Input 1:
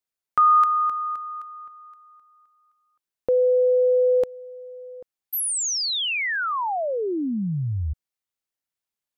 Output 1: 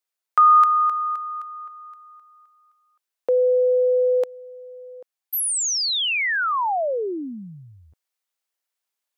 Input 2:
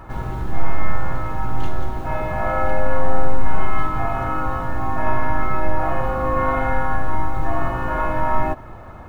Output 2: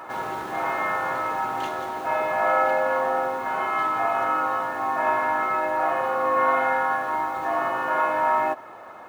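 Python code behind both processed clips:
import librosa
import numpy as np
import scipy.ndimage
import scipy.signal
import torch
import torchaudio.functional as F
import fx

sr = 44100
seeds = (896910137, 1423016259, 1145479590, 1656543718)

p1 = scipy.signal.sosfilt(scipy.signal.butter(2, 470.0, 'highpass', fs=sr, output='sos'), x)
p2 = fx.rider(p1, sr, range_db=5, speed_s=2.0)
p3 = p1 + (p2 * librosa.db_to_amplitude(1.0))
y = p3 * librosa.db_to_amplitude(-4.5)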